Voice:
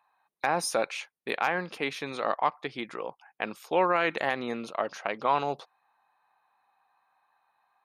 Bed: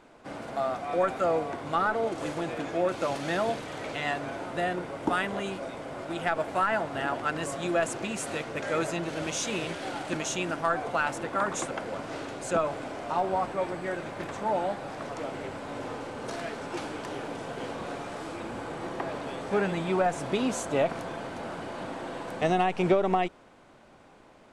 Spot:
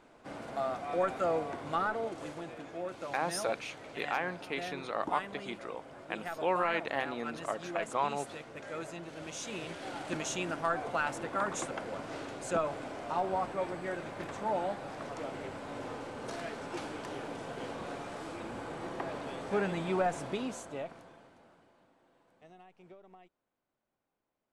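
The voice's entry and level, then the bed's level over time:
2.70 s, -6.0 dB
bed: 1.72 s -4.5 dB
2.61 s -12 dB
9.11 s -12 dB
10.14 s -4.5 dB
20.14 s -4.5 dB
21.94 s -31.5 dB

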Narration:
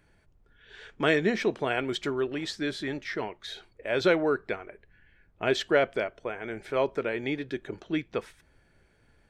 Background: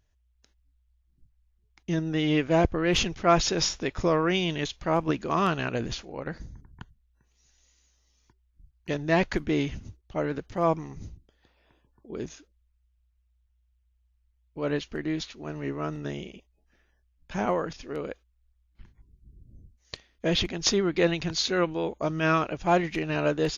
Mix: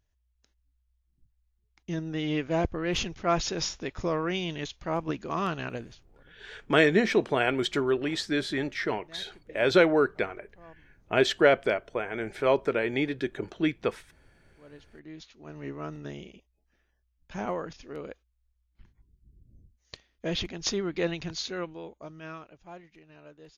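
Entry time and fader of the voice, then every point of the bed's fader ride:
5.70 s, +3.0 dB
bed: 5.74 s -5 dB
6.07 s -27.5 dB
14.43 s -27.5 dB
15.63 s -5.5 dB
21.28 s -5.5 dB
22.90 s -25.5 dB

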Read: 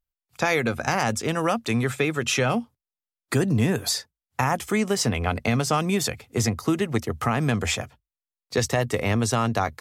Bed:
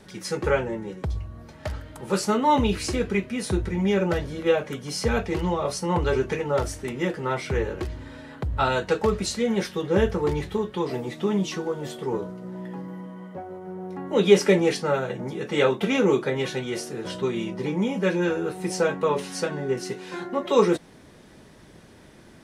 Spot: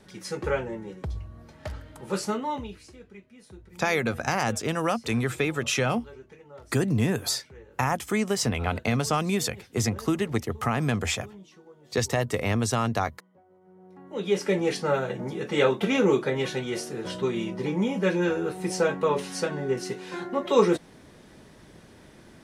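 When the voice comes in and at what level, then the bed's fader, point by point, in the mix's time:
3.40 s, -2.5 dB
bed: 2.28 s -4.5 dB
2.92 s -23 dB
13.40 s -23 dB
14.86 s -1 dB

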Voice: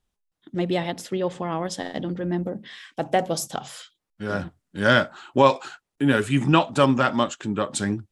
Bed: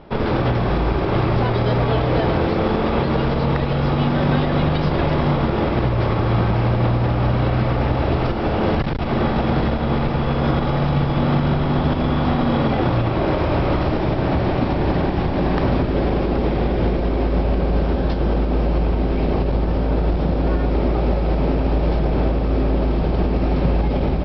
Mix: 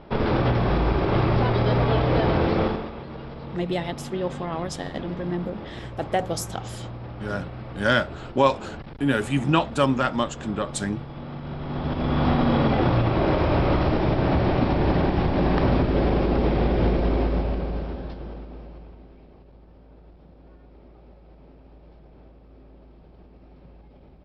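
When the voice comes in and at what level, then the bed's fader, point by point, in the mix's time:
3.00 s, -2.5 dB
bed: 2.63 s -2.5 dB
2.94 s -18 dB
11.35 s -18 dB
12.23 s -2 dB
17.14 s -2 dB
19.30 s -31 dB

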